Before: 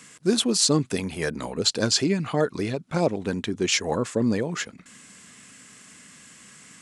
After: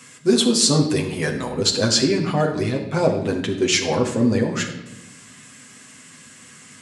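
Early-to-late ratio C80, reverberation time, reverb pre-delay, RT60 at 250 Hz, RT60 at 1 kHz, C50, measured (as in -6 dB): 10.0 dB, 1.0 s, 8 ms, 1.4 s, 0.85 s, 8.0 dB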